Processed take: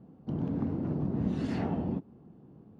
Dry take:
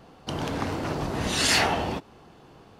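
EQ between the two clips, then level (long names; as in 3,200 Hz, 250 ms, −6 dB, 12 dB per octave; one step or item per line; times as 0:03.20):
resonant band-pass 210 Hz, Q 1.6
low-shelf EQ 200 Hz +7.5 dB
0.0 dB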